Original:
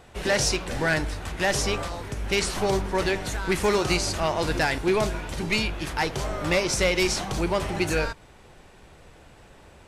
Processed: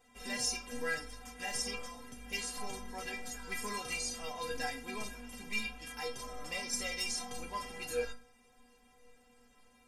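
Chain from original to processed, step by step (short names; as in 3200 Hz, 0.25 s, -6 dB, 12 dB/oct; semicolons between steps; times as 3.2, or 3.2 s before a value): high shelf 4400 Hz +8 dB; notch 4000 Hz, Q 6.8; metallic resonator 240 Hz, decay 0.35 s, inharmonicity 0.008; on a send: reverb RT60 0.45 s, pre-delay 3 ms, DRR 8.5 dB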